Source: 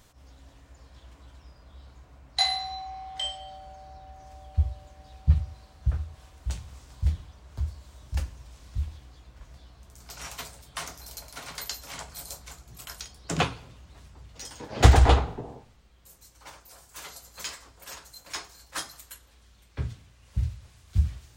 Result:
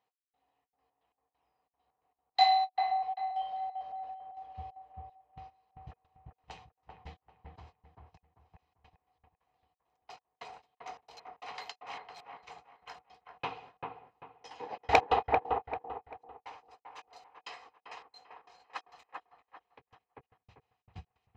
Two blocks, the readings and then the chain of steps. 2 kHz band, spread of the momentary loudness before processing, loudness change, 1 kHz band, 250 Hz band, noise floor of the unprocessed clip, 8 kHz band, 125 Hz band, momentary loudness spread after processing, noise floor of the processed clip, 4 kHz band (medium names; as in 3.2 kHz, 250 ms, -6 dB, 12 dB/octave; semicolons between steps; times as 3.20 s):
-4.0 dB, 21 LU, -3.5 dB, +3.0 dB, -14.0 dB, -57 dBFS, -21.5 dB, -26.0 dB, 25 LU, under -85 dBFS, -8.5 dB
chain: frequency weighting A; gate -51 dBFS, range -19 dB; comb 1 ms, depth 45%; trance gate "x..xxx.x." 134 bpm -60 dB; small resonant body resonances 470/740/2500 Hz, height 16 dB, ringing for 40 ms; integer overflow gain 3.5 dB; distance through air 210 m; on a send: feedback echo behind a low-pass 392 ms, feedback 30%, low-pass 1.7 kHz, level -3 dB; on the sum: endings held to a fixed fall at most 580 dB/s; trim -5 dB